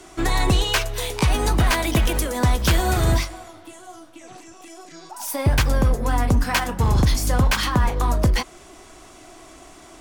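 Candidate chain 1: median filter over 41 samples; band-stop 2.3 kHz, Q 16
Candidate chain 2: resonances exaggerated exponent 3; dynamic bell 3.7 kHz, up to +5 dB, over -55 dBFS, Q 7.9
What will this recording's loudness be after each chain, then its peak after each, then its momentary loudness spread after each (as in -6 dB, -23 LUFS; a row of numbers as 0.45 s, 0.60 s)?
-22.5 LUFS, -22.5 LUFS; -11.0 dBFS, -9.0 dBFS; 7 LU, 9 LU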